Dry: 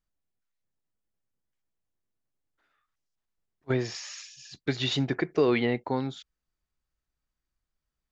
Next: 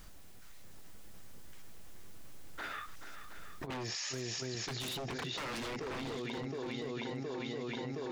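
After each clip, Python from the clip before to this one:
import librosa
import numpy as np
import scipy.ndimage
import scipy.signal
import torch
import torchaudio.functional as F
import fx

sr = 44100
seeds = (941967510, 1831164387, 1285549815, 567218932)

y = fx.echo_swing(x, sr, ms=718, ratio=1.5, feedback_pct=61, wet_db=-10.0)
y = 10.0 ** (-27.5 / 20.0) * (np.abs((y / 10.0 ** (-27.5 / 20.0) + 3.0) % 4.0 - 2.0) - 1.0)
y = fx.env_flatten(y, sr, amount_pct=100)
y = y * librosa.db_to_amplitude(-8.0)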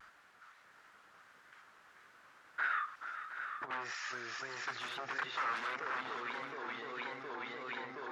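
y = fx.bandpass_q(x, sr, hz=1400.0, q=2.9)
y = fx.vibrato(y, sr, rate_hz=1.6, depth_cents=75.0)
y = fx.echo_feedback(y, sr, ms=777, feedback_pct=43, wet_db=-10.5)
y = y * librosa.db_to_amplitude(10.5)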